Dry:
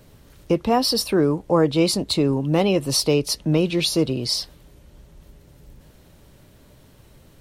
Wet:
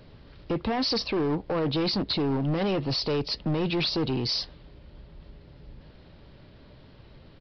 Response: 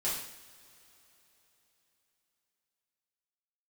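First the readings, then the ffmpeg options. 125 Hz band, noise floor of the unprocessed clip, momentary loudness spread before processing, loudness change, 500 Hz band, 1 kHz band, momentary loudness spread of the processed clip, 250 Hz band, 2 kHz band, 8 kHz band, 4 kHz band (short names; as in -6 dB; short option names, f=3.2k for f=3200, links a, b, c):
-5.5 dB, -52 dBFS, 5 LU, -6.5 dB, -8.0 dB, -7.0 dB, 3 LU, -7.0 dB, -4.0 dB, -20.5 dB, -4.5 dB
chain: -af "alimiter=limit=-15dB:level=0:latency=1:release=12,aresample=11025,asoftclip=type=hard:threshold=-23dB,aresample=44100"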